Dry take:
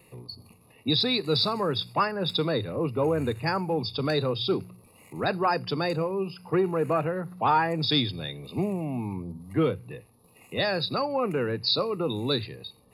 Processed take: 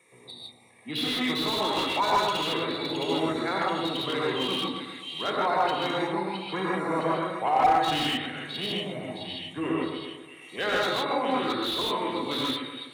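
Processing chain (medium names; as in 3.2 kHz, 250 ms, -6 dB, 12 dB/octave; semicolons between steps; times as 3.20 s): formant shift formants -3 st; frequency weighting A; two-band feedback delay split 2.1 kHz, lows 124 ms, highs 664 ms, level -6 dB; gated-style reverb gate 180 ms rising, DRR -4 dB; slew-rate limiter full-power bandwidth 170 Hz; trim -2.5 dB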